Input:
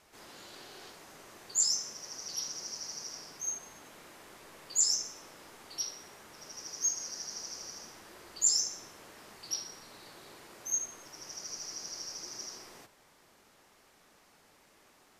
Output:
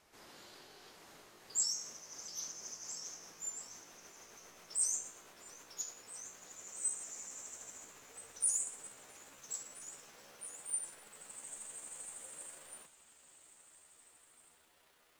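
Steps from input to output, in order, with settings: gliding pitch shift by +8.5 st starting unshifted; delay with a stepping band-pass 0.663 s, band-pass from 3400 Hz, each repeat 0.7 oct, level -9.5 dB; gain -5 dB

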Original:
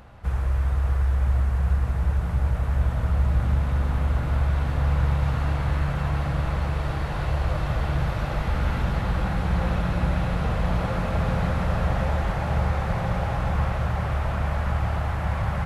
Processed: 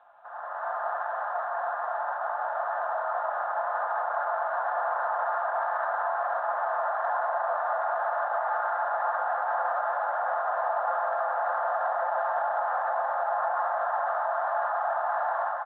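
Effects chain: Chebyshev band-pass 640–1700 Hz, order 4; tilt -4 dB/oct; on a send: tape echo 0.271 s, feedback 33%, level -15 dB, low-pass 1200 Hz; on the sum: AGC gain up to 13 dB; air absorption 61 m; limiter -18.5 dBFS, peak gain reduction 11.5 dB; comb 5.7 ms, depth 42%; gain -2 dB; G.726 40 kbps 8000 Hz

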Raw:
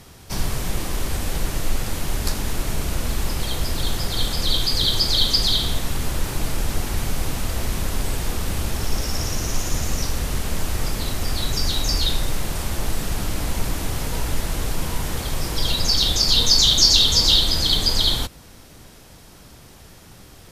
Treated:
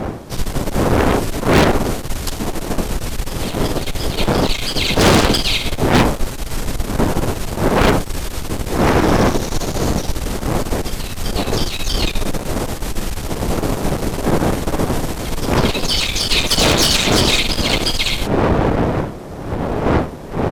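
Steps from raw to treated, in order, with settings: wind noise 520 Hz -16 dBFS; harmoniser -7 st -2 dB; added harmonics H 5 -8 dB, 6 -8 dB, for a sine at 2.5 dBFS; gain -10.5 dB

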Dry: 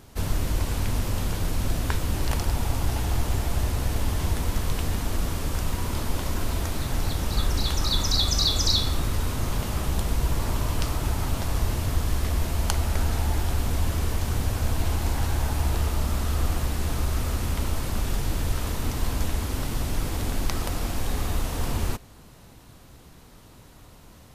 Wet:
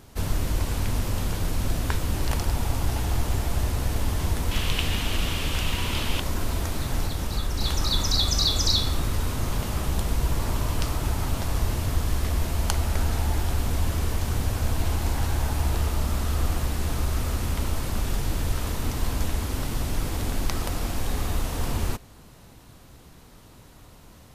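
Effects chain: 4.51–6.2 bell 2900 Hz +13.5 dB 1 oct; 7.04–7.61 compressor 2:1, threshold -24 dBFS, peak gain reduction 4 dB

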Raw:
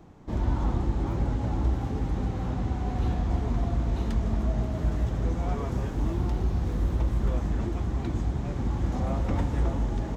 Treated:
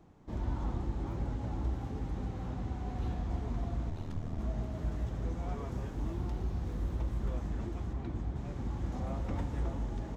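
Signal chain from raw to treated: 3.89–4.39 ring modulator 39 Hz; 7.93–8.36 high shelf 4800 Hz -10.5 dB; gain -8.5 dB

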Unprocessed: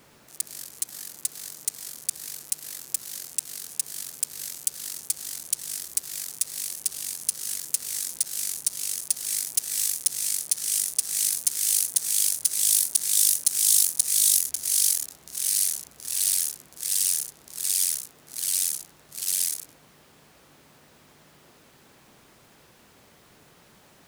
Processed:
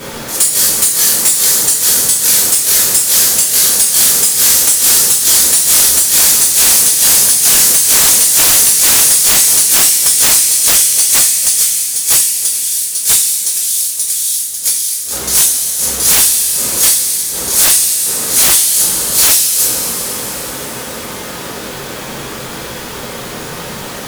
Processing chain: flipped gate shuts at -12 dBFS, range -26 dB; two-slope reverb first 0.38 s, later 4.5 s, from -17 dB, DRR -8 dB; sine folder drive 15 dB, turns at -7.5 dBFS; gain +3.5 dB

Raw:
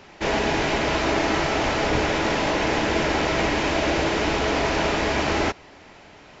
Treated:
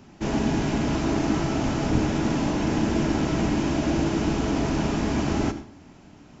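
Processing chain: graphic EQ 125/250/500/1000/2000/4000 Hz +4/+7/-9/-4/-10/-8 dB; on a send: reverb RT60 0.45 s, pre-delay 67 ms, DRR 12 dB

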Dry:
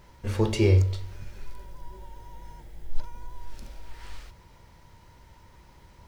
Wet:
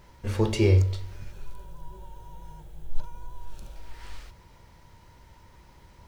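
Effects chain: 1.32–3.76 thirty-one-band EQ 160 Hz +7 dB, 250 Hz -11 dB, 2000 Hz -11 dB, 5000 Hz -7 dB

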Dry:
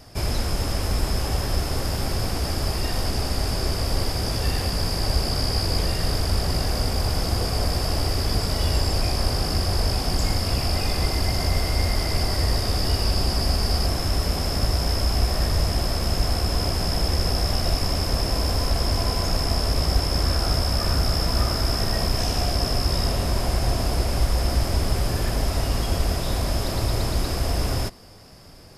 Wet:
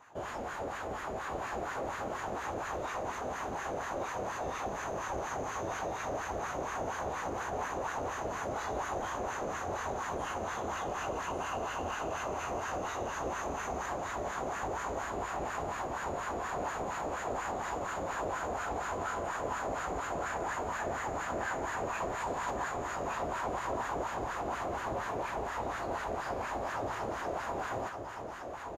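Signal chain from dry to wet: wah 4.2 Hz 380–1200 Hz, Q 2.2; formant shift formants +5 st; soft clip -26 dBFS, distortion -24 dB; on a send: echo 1.166 s -5 dB

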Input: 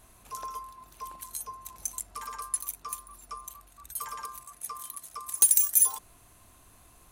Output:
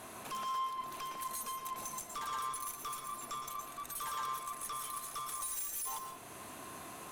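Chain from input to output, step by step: HPF 200 Hz 12 dB/oct; high shelf 3900 Hz -8 dB; compressor 1.5:1, threshold -55 dBFS, peak gain reduction 11.5 dB; tube stage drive 52 dB, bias 0.25; on a send: reverb RT60 0.35 s, pre-delay 0.109 s, DRR 4.5 dB; on the sum: gain +14 dB

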